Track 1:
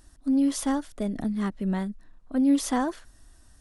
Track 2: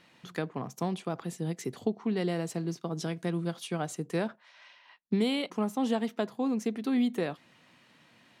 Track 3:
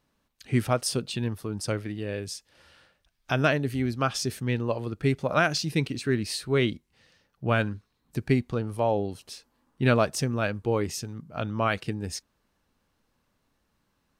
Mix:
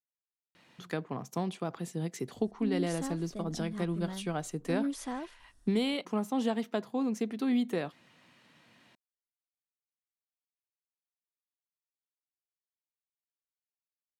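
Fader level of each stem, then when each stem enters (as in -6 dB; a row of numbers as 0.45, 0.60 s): -12.0 dB, -1.5 dB, off; 2.35 s, 0.55 s, off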